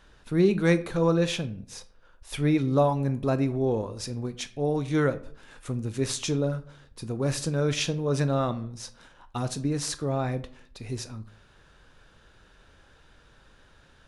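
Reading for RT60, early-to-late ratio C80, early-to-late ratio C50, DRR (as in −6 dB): 0.55 s, 20.5 dB, 17.0 dB, 11.5 dB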